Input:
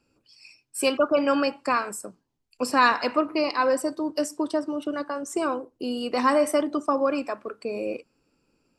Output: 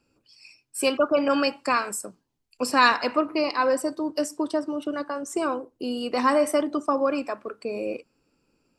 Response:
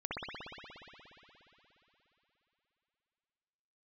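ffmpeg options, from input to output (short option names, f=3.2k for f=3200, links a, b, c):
-filter_complex "[0:a]asettb=1/sr,asplit=3[a][b][c];[a]atrim=end=1.284[d];[b]atrim=start=1.28:end=2.97,asetpts=PTS-STARTPTS,afade=t=in:d=0.004:c=qsin,afade=t=out:st=1.686:d=0.004:c=qsin,adynamicequalizer=threshold=0.0224:dfrequency=2000:dqfactor=0.7:tfrequency=2000:tqfactor=0.7:attack=5:release=100:ratio=0.375:range=2.5:mode=boostabove:tftype=highshelf[e];[c]atrim=start=2.966[f];[d][e]acrossfade=d=0.004:c1=hsin:c2=qsin[g];[g][f]acrossfade=d=0.004:c1=qsin:c2=hsin"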